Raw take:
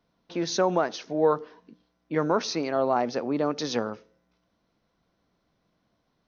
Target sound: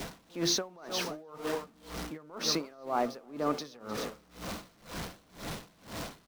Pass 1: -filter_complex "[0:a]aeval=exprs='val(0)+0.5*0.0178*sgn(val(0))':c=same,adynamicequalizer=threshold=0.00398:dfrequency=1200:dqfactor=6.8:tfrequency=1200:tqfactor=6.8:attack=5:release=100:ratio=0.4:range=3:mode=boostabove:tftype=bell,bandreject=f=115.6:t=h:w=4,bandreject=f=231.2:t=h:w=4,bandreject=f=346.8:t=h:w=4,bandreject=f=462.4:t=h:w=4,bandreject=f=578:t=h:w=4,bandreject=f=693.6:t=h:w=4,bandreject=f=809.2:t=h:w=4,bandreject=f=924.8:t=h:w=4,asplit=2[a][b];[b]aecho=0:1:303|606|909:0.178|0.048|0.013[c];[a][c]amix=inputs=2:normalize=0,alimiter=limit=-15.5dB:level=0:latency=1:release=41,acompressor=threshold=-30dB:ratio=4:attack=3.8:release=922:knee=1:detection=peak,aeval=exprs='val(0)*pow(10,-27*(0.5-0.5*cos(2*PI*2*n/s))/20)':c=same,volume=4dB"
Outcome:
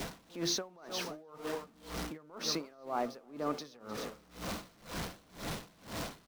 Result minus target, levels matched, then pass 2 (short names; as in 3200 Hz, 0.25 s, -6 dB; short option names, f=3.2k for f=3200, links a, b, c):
compressor: peak gain reduction +4.5 dB
-filter_complex "[0:a]aeval=exprs='val(0)+0.5*0.0178*sgn(val(0))':c=same,adynamicequalizer=threshold=0.00398:dfrequency=1200:dqfactor=6.8:tfrequency=1200:tqfactor=6.8:attack=5:release=100:ratio=0.4:range=3:mode=boostabove:tftype=bell,bandreject=f=115.6:t=h:w=4,bandreject=f=231.2:t=h:w=4,bandreject=f=346.8:t=h:w=4,bandreject=f=462.4:t=h:w=4,bandreject=f=578:t=h:w=4,bandreject=f=693.6:t=h:w=4,bandreject=f=809.2:t=h:w=4,bandreject=f=924.8:t=h:w=4,asplit=2[a][b];[b]aecho=0:1:303|606|909:0.178|0.048|0.013[c];[a][c]amix=inputs=2:normalize=0,alimiter=limit=-15.5dB:level=0:latency=1:release=41,acompressor=threshold=-24dB:ratio=4:attack=3.8:release=922:knee=1:detection=peak,aeval=exprs='val(0)*pow(10,-27*(0.5-0.5*cos(2*PI*2*n/s))/20)':c=same,volume=4dB"